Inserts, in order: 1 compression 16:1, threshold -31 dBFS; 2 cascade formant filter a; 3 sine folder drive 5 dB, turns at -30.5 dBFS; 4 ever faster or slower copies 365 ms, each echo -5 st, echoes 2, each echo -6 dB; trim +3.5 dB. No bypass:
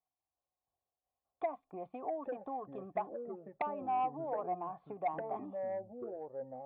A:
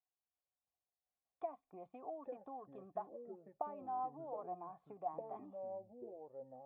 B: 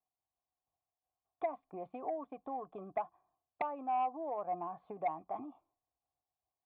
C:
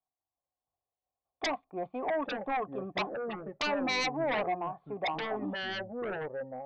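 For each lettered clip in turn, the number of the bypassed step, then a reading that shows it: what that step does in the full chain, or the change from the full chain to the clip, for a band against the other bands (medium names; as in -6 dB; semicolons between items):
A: 3, distortion -14 dB; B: 4, 125 Hz band -4.0 dB; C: 1, mean gain reduction 9.0 dB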